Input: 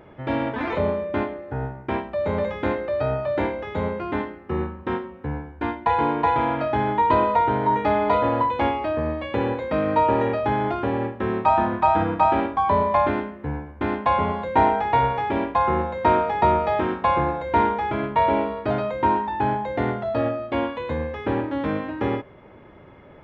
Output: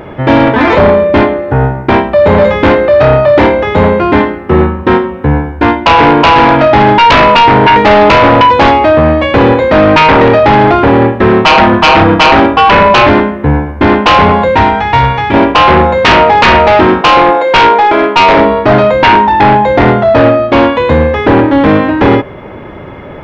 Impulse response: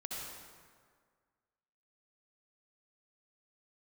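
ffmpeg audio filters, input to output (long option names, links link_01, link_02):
-filter_complex "[0:a]asettb=1/sr,asplit=3[link_01][link_02][link_03];[link_01]atrim=end=14.554[link_04];[link_02]atrim=start=14.55:end=15.34,asetpts=PTS-STARTPTS,afade=type=in:duration=0.004:curve=qsin,afade=type=out:start_time=0.786:duration=0.004:curve=qsin,equalizer=frequency=550:width_type=o:width=2.3:gain=-12[link_05];[link_03]atrim=start=15.336[link_06];[link_04][link_05]acrossfade=duration=0.004:curve1=hsin:curve2=qsin[link_07];[link_07][link_06]acrossfade=duration=0.004:curve1=qsin:curve2=hsin,asettb=1/sr,asplit=3[link_08][link_09][link_10];[link_08]atrim=end=17.014[link_11];[link_09]atrim=start=17.01:end=18.37,asetpts=PTS-STARTPTS,afade=type=in:duration=0.004:curve=qsin,afade=type=out:start_time=1.356:duration=0.004:curve=qsin,highpass=frequency=300:width=0.5412,highpass=frequency=300:width=1.3066[link_12];[link_10]atrim=start=18.366[link_13];[link_11][link_12]acrossfade=duration=0.004:curve1=hsin:curve2=qsin[link_14];[link_14][link_13]acrossfade=duration=0.004:curve1=qsin:curve2=hsin,aeval=exprs='0.501*sin(PI/2*3.98*val(0)/0.501)':channel_layout=same,volume=5dB"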